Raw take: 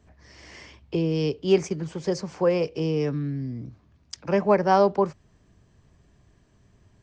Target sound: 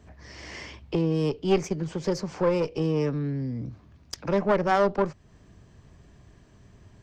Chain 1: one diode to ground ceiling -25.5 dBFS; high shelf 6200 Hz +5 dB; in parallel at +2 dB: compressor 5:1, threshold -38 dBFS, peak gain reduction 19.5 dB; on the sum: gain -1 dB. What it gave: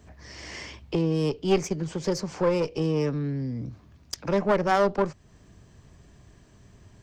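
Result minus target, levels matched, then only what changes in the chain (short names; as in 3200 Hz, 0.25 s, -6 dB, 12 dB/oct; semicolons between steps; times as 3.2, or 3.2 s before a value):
8000 Hz band +4.0 dB
change: high shelf 6200 Hz -3 dB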